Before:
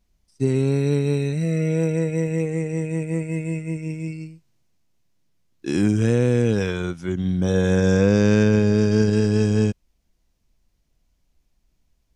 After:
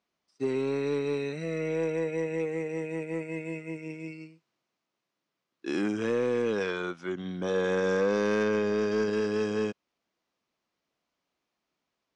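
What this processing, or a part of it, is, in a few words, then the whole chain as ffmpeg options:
intercom: -af "highpass=340,lowpass=4400,equalizer=frequency=1200:width_type=o:width=0.45:gain=6,asoftclip=type=tanh:threshold=-16.5dB,volume=-2.5dB"

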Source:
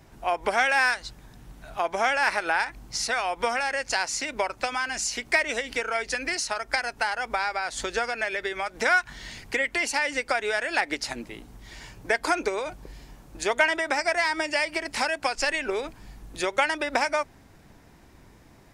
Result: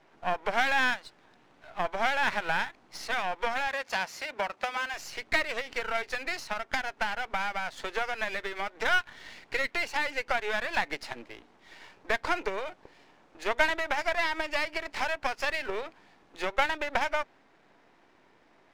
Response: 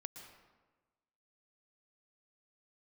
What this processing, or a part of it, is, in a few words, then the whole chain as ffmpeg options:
crystal radio: -filter_complex "[0:a]highpass=360,lowpass=3300,aeval=exprs='if(lt(val(0),0),0.251*val(0),val(0))':channel_layout=same,asettb=1/sr,asplit=3[link_01][link_02][link_03];[link_01]atrim=end=3.674[link_04];[link_02]atrim=start=3.67:end=4.94,asetpts=PTS-STARTPTS,afade=type=in:duration=0.004:curve=qsin,afade=type=out:start_time=1.266:duration=0.004:curve=qsin,highpass=frequency=130:poles=1[link_05];[link_03]atrim=start=4.936[link_06];[link_04][link_05]acrossfade=duration=0.004:curve1=hsin:curve2=qsin[link_07];[link_07][link_06]acrossfade=duration=0.004:curve1=qsin:curve2=hsin"

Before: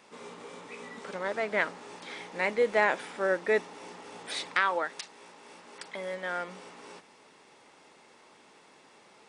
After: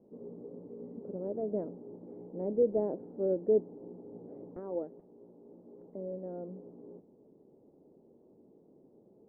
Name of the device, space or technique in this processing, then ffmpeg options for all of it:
under water: -af "lowpass=frequency=410:width=0.5412,lowpass=frequency=410:width=1.3066,equalizer=frequency=660:width_type=o:width=0.77:gain=4,volume=4dB"

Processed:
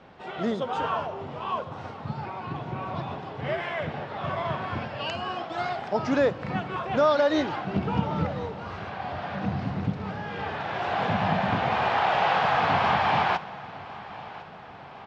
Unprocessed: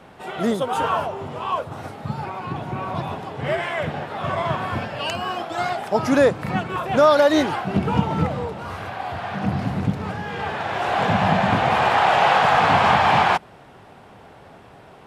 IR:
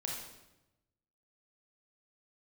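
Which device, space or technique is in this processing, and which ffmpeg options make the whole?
compressed reverb return: -filter_complex "[0:a]asplit=2[link_01][link_02];[1:a]atrim=start_sample=2205[link_03];[link_02][link_03]afir=irnorm=-1:irlink=0,acompressor=threshold=-22dB:ratio=6,volume=-8dB[link_04];[link_01][link_04]amix=inputs=2:normalize=0,lowpass=frequency=5600:width=0.5412,lowpass=frequency=5600:width=1.3066,aecho=1:1:1054|2108|3162|4216|5270:0.119|0.0677|0.0386|0.022|0.0125,volume=-7.5dB"

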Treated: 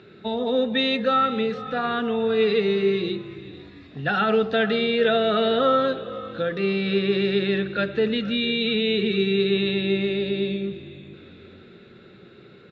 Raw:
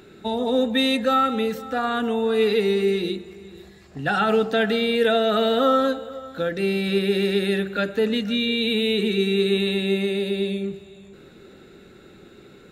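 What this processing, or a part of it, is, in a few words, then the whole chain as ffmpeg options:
frequency-shifting delay pedal into a guitar cabinet: -filter_complex "[0:a]asplit=5[link_01][link_02][link_03][link_04][link_05];[link_02]adelay=452,afreqshift=-54,volume=-18.5dB[link_06];[link_03]adelay=904,afreqshift=-108,volume=-24.2dB[link_07];[link_04]adelay=1356,afreqshift=-162,volume=-29.9dB[link_08];[link_05]adelay=1808,afreqshift=-216,volume=-35.5dB[link_09];[link_01][link_06][link_07][link_08][link_09]amix=inputs=5:normalize=0,highpass=91,equalizer=frequency=120:width_type=q:width=4:gain=4,equalizer=frequency=280:width_type=q:width=4:gain=-5,equalizer=frequency=830:width_type=q:width=4:gain=-5,lowpass=frequency=4400:width=0.5412,lowpass=frequency=4400:width=1.3066"

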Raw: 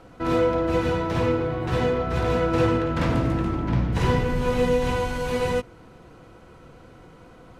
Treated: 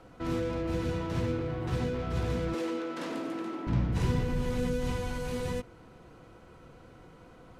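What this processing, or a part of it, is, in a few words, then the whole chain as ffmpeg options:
one-band saturation: -filter_complex "[0:a]acrossover=split=340|4700[link_01][link_02][link_03];[link_02]asoftclip=type=tanh:threshold=-32.5dB[link_04];[link_01][link_04][link_03]amix=inputs=3:normalize=0,asettb=1/sr,asplit=3[link_05][link_06][link_07];[link_05]atrim=end=2.544[link_08];[link_06]atrim=start=2.54:end=3.67,asetpts=PTS-STARTPTS,afade=type=in:duration=0.004:curve=qsin,afade=type=out:start_time=1.126:duration=0.004:curve=qsin,highpass=frequency=280:width=0.5412,highpass=frequency=280:width=1.3066[link_09];[link_07]atrim=start=3.666[link_10];[link_08][link_09]acrossfade=duration=0.004:curve1=hsin:curve2=qsin[link_11];[link_11][link_10]acrossfade=duration=0.004:curve1=qsin:curve2=hsin,volume=-5dB"

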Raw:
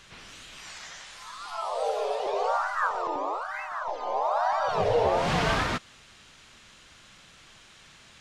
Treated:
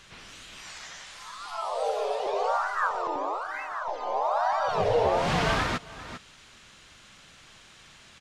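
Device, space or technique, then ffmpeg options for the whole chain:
ducked delay: -filter_complex "[0:a]asplit=3[link_01][link_02][link_03];[link_02]adelay=397,volume=-9dB[link_04];[link_03]apad=whole_len=379325[link_05];[link_04][link_05]sidechaincompress=threshold=-43dB:ratio=6:attack=16:release=342[link_06];[link_01][link_06]amix=inputs=2:normalize=0"

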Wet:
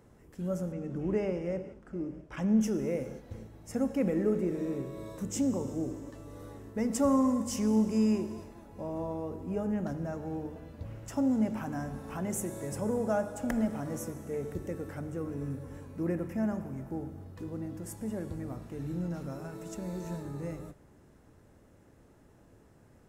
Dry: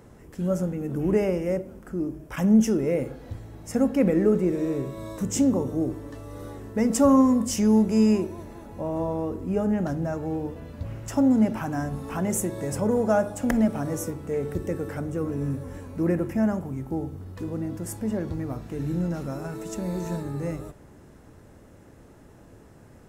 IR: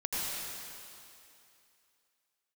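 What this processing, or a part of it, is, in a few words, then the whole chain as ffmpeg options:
keyed gated reverb: -filter_complex "[0:a]asplit=3[link_01][link_02][link_03];[1:a]atrim=start_sample=2205[link_04];[link_02][link_04]afir=irnorm=-1:irlink=0[link_05];[link_03]apad=whole_len=1018084[link_06];[link_05][link_06]sidechaingate=range=-33dB:threshold=-39dB:ratio=16:detection=peak,volume=-16.5dB[link_07];[link_01][link_07]amix=inputs=2:normalize=0,asettb=1/sr,asplit=3[link_08][link_09][link_10];[link_08]atrim=end=0.724[link_11];[link_09]atrim=start=0.72:end=2.61,asetpts=PTS-STARTPTS,afade=type=in:duration=0.004:curve=qsin,afade=type=out:start_time=1.886:duration=0.004:curve=qsin,lowpass=5900[link_12];[link_10]atrim=start=2.606[link_13];[link_11][link_12]acrossfade=duration=0.004:curve1=hsin:curve2=qsin[link_14];[link_14][link_13]acrossfade=duration=0.004:curve1=qsin:curve2=hsin,volume=-9dB"

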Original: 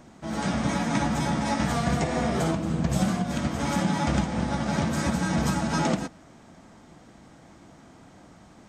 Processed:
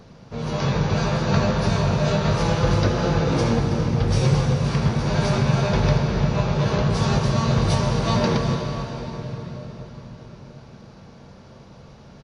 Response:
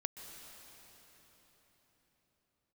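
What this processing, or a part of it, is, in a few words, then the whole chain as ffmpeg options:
slowed and reverbed: -filter_complex "[0:a]asplit=2[link_01][link_02];[link_02]adelay=15,volume=-12dB[link_03];[link_01][link_03]amix=inputs=2:normalize=0,asetrate=31311,aresample=44100[link_04];[1:a]atrim=start_sample=2205[link_05];[link_04][link_05]afir=irnorm=-1:irlink=0,volume=6dB"

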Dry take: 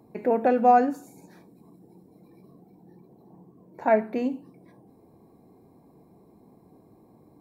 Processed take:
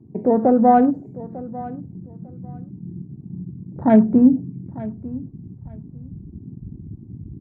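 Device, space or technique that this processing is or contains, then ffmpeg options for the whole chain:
behind a face mask: -af "aemphasis=mode=reproduction:type=riaa,afwtdn=0.02,asubboost=boost=5.5:cutoff=230,highshelf=frequency=2600:gain=-6.5,aecho=1:1:898|1796:0.126|0.0239,volume=3dB"

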